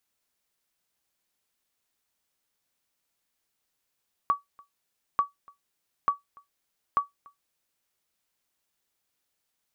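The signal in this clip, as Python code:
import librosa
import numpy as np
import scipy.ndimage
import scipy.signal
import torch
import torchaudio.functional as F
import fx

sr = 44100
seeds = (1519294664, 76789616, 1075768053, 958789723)

y = fx.sonar_ping(sr, hz=1140.0, decay_s=0.15, every_s=0.89, pings=4, echo_s=0.29, echo_db=-27.5, level_db=-14.5)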